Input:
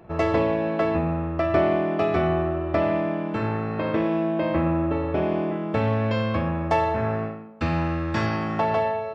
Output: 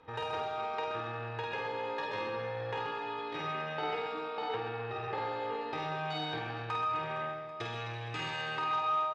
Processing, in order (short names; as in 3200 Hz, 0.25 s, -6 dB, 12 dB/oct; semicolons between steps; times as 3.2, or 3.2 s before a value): LPF 3400 Hz 12 dB/oct; tilt shelf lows -4 dB, about 800 Hz; comb 3.4 ms, depth 60%; compressor 8:1, threshold -23 dBFS, peak gain reduction 9 dB; pitch shift +6 st; resonator 89 Hz, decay 1.8 s, harmonics all, mix 80%; on a send: reverse bouncing-ball echo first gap 50 ms, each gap 1.6×, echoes 5; on the sum: core saturation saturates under 730 Hz; gain +2.5 dB